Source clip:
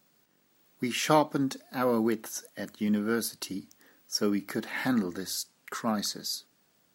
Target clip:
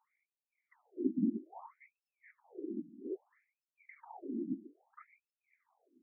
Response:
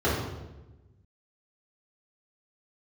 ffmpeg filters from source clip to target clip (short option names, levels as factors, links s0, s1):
-filter_complex "[0:a]equalizer=f=94:w=0.65:g=-7,areverse,acompressor=threshold=0.0112:ratio=12,areverse,aeval=exprs='val(0)+0.00112*(sin(2*PI*50*n/s)+sin(2*PI*2*50*n/s)/2+sin(2*PI*3*50*n/s)/3+sin(2*PI*4*50*n/s)/4+sin(2*PI*5*50*n/s)/5)':c=same,atempo=1.2,asplit=2[s0][s1];[s1]adynamicsmooth=sensitivity=7.5:basefreq=3000,volume=1.26[s2];[s0][s2]amix=inputs=2:normalize=0,asplit=3[s3][s4][s5];[s3]bandpass=f=300:t=q:w=8,volume=1[s6];[s4]bandpass=f=870:t=q:w=8,volume=0.501[s7];[s5]bandpass=f=2240:t=q:w=8,volume=0.355[s8];[s6][s7][s8]amix=inputs=3:normalize=0,afftfilt=real='hypot(re,im)*cos(2*PI*random(0))':imag='hypot(re,im)*sin(2*PI*random(1))':win_size=512:overlap=0.75,asplit=7[s9][s10][s11][s12][s13][s14][s15];[s10]adelay=137,afreqshift=-32,volume=0.141[s16];[s11]adelay=274,afreqshift=-64,volume=0.0902[s17];[s12]adelay=411,afreqshift=-96,volume=0.0575[s18];[s13]adelay=548,afreqshift=-128,volume=0.0372[s19];[s14]adelay=685,afreqshift=-160,volume=0.0237[s20];[s15]adelay=822,afreqshift=-192,volume=0.0151[s21];[s9][s16][s17][s18][s19][s20][s21]amix=inputs=7:normalize=0,asetrate=42336,aresample=44100,asuperstop=centerf=3800:order=20:qfactor=1.1,afftfilt=real='re*between(b*sr/1024,240*pow(3800/240,0.5+0.5*sin(2*PI*0.61*pts/sr))/1.41,240*pow(3800/240,0.5+0.5*sin(2*PI*0.61*pts/sr))*1.41)':imag='im*between(b*sr/1024,240*pow(3800/240,0.5+0.5*sin(2*PI*0.61*pts/sr))/1.41,240*pow(3800/240,0.5+0.5*sin(2*PI*0.61*pts/sr))*1.41)':win_size=1024:overlap=0.75,volume=5.62"